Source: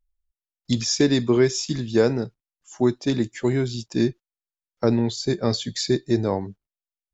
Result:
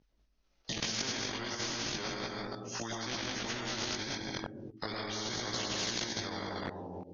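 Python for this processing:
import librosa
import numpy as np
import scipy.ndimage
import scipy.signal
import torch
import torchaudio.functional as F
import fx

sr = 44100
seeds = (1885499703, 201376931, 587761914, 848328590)

y = fx.pitch_heads(x, sr, semitones=-1.5)
y = fx.highpass(y, sr, hz=48.0, slope=6)
y = fx.peak_eq(y, sr, hz=220.0, db=9.0, octaves=2.5)
y = y + 10.0 ** (-8.0 / 20.0) * np.pad(y, (int(196 * sr / 1000.0), 0))[:len(y)]
y = fx.rev_freeverb(y, sr, rt60_s=0.63, hf_ratio=0.3, predelay_ms=70, drr_db=-0.5)
y = fx.level_steps(y, sr, step_db=22)
y = scipy.signal.sosfilt(scipy.signal.butter(16, 6300.0, 'lowpass', fs=sr, output='sos'), y)
y = fx.low_shelf(y, sr, hz=100.0, db=-8.5)
y = fx.over_compress(y, sr, threshold_db=-27.0, ratio=-0.5)
y = fx.chorus_voices(y, sr, voices=2, hz=0.35, base_ms=19, depth_ms=3.1, mix_pct=50)
y = fx.spectral_comp(y, sr, ratio=4.0)
y = F.gain(torch.from_numpy(y), -3.0).numpy()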